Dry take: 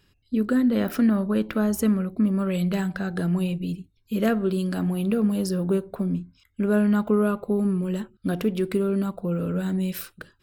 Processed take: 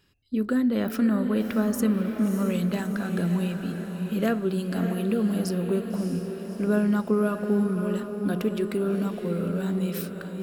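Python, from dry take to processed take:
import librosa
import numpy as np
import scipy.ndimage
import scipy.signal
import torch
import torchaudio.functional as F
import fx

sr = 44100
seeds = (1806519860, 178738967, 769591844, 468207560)

p1 = fx.low_shelf(x, sr, hz=70.0, db=-7.0)
p2 = p1 + fx.echo_diffused(p1, sr, ms=611, feedback_pct=56, wet_db=-7, dry=0)
y = p2 * librosa.db_to_amplitude(-2.0)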